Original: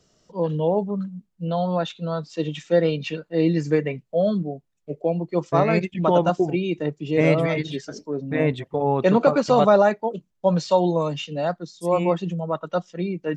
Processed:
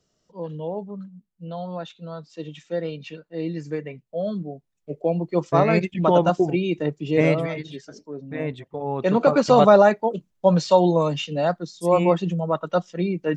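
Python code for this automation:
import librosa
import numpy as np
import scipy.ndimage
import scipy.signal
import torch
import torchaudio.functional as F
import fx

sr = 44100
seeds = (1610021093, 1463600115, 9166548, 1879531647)

y = fx.gain(x, sr, db=fx.line((3.9, -8.5), (5.17, 1.0), (7.18, 1.0), (7.58, -7.0), (8.84, -7.0), (9.42, 2.5)))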